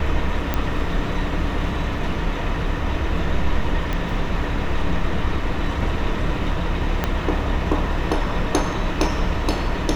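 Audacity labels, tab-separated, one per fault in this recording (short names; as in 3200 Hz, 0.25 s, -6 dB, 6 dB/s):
0.540000	0.540000	pop -7 dBFS
3.930000	3.930000	pop -12 dBFS
7.040000	7.040000	pop -7 dBFS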